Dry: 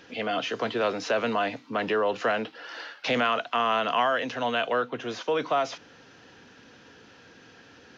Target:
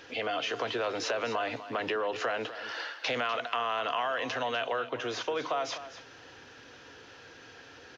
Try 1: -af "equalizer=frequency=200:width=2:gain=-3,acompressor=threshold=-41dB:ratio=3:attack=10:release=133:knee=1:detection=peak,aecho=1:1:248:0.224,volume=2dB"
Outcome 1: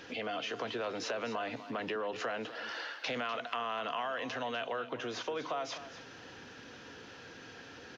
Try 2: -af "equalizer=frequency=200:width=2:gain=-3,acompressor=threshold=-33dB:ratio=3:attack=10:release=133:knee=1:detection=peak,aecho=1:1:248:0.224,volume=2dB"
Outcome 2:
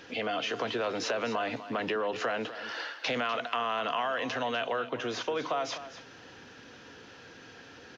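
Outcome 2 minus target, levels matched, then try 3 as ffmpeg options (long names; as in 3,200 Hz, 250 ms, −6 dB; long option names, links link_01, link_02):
250 Hz band +3.5 dB
-af "equalizer=frequency=200:width=2:gain=-12.5,acompressor=threshold=-33dB:ratio=3:attack=10:release=133:knee=1:detection=peak,aecho=1:1:248:0.224,volume=2dB"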